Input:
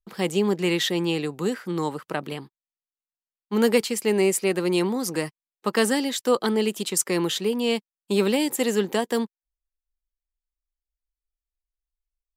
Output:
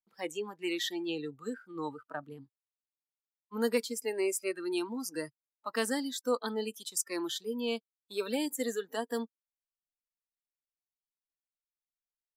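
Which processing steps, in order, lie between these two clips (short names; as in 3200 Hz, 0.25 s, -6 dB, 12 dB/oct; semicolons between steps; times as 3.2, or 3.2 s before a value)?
spectral noise reduction 20 dB; gain -9 dB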